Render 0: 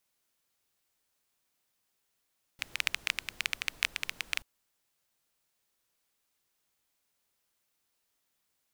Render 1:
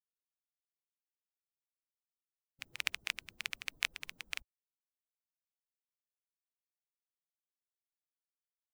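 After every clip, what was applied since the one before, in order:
spectral dynamics exaggerated over time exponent 2
level −2.5 dB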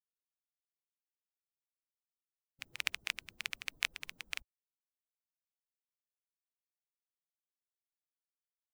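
no processing that can be heard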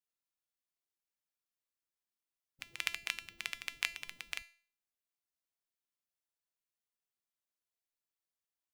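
tuned comb filter 340 Hz, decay 0.43 s, harmonics all, mix 70%
level +9 dB

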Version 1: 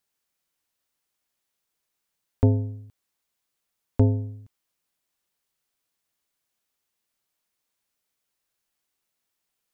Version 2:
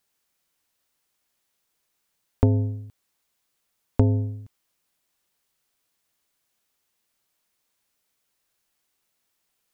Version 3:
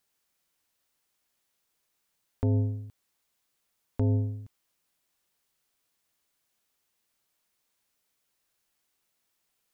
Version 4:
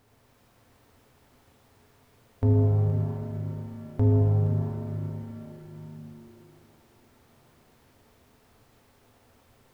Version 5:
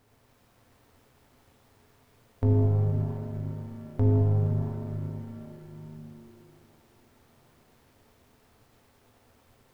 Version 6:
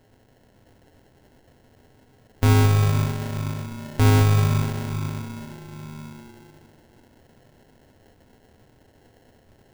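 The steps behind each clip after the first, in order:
downward compressor, threshold −19 dBFS, peak gain reduction 6.5 dB; level +5 dB
brickwall limiter −15 dBFS, peak gain reduction 10.5 dB; level −2 dB
compressor on every frequency bin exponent 0.6; reverb with rising layers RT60 3.3 s, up +7 semitones, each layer −8 dB, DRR −2.5 dB
gain on one half-wave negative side −3 dB
sample-rate reduction 1,200 Hz, jitter 0%; level +6 dB

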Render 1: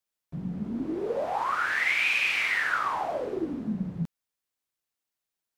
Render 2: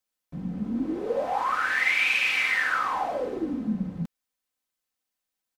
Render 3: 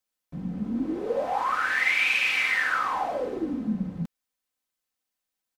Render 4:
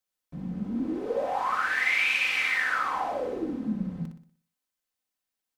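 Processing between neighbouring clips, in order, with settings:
comb filter 3.9 ms, depth 45%; level +1 dB
no processing that can be heard
flutter between parallel walls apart 10.4 metres, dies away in 0.49 s; level −2.5 dB

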